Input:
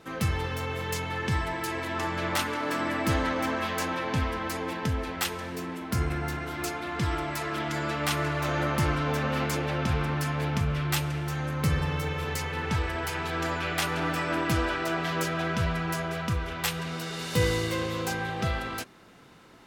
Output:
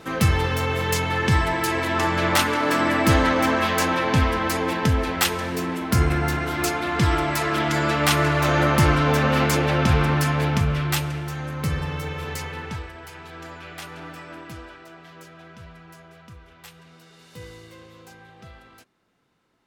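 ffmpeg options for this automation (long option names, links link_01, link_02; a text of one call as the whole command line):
ffmpeg -i in.wav -af "volume=8.5dB,afade=type=out:start_time=10.12:duration=1.22:silence=0.398107,afade=type=out:start_time=12.43:duration=0.5:silence=0.334965,afade=type=out:start_time=14:duration=0.91:silence=0.446684" out.wav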